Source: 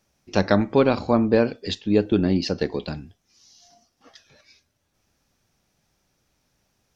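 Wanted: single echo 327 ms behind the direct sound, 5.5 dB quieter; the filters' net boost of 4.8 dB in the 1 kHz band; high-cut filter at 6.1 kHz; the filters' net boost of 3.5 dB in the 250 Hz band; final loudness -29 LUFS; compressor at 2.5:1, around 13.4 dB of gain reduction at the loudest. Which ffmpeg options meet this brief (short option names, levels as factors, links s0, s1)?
-af "lowpass=6100,equalizer=f=250:t=o:g=4,equalizer=f=1000:t=o:g=6,acompressor=threshold=0.0282:ratio=2.5,aecho=1:1:327:0.531,volume=1.19"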